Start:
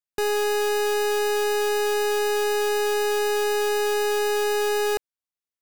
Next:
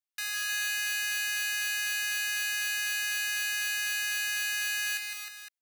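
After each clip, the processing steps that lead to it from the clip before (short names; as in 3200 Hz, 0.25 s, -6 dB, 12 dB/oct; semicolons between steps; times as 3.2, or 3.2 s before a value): inverse Chebyshev high-pass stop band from 450 Hz, stop band 60 dB; comb 2.9 ms, depth 32%; on a send: tapped delay 0.158/0.218/0.309/0.51 s -6/-18/-5/-11.5 dB; on the sum: gain -2.5 dB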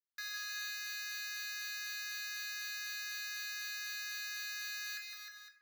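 tone controls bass -12 dB, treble -5 dB; fixed phaser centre 2800 Hz, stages 6; shoebox room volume 150 m³, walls mixed, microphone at 0.5 m; gain -4.5 dB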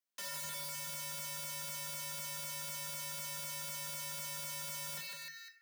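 notch 1100 Hz, Q 13; wrapped overs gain 40.5 dB; frequency shift +150 Hz; gain +2.5 dB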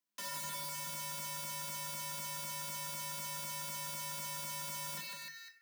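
small resonant body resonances 210/300/1000 Hz, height 11 dB, ringing for 95 ms; short-mantissa float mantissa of 2-bit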